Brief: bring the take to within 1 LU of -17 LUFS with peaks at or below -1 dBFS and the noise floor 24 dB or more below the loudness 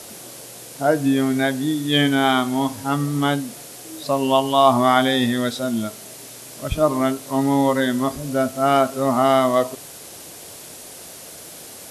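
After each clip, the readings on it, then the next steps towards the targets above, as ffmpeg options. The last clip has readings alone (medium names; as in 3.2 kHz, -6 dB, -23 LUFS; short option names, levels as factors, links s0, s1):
noise floor -39 dBFS; noise floor target -44 dBFS; loudness -19.5 LUFS; peak level -1.5 dBFS; loudness target -17.0 LUFS
-> -af "afftdn=nr=6:nf=-39"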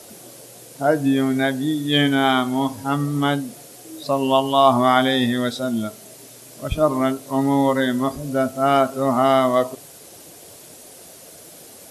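noise floor -43 dBFS; noise floor target -44 dBFS
-> -af "afftdn=nr=6:nf=-43"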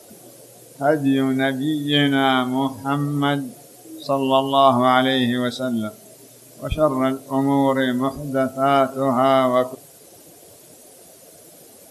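noise floor -47 dBFS; loudness -19.5 LUFS; peak level -1.5 dBFS; loudness target -17.0 LUFS
-> -af "volume=1.33,alimiter=limit=0.891:level=0:latency=1"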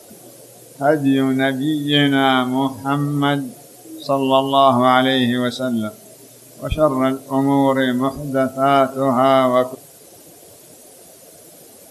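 loudness -17.0 LUFS; peak level -1.0 dBFS; noise floor -44 dBFS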